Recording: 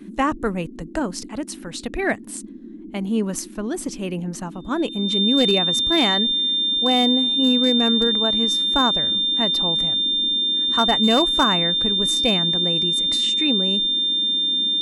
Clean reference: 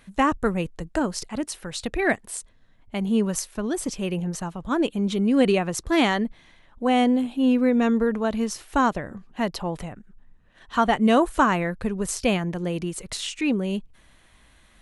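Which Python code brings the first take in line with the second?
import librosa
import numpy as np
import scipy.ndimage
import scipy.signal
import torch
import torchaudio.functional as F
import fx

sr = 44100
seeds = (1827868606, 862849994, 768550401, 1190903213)

y = fx.fix_declip(x, sr, threshold_db=-10.0)
y = fx.notch(y, sr, hz=3600.0, q=30.0)
y = fx.noise_reduce(y, sr, print_start_s=2.43, print_end_s=2.93, reduce_db=19.0)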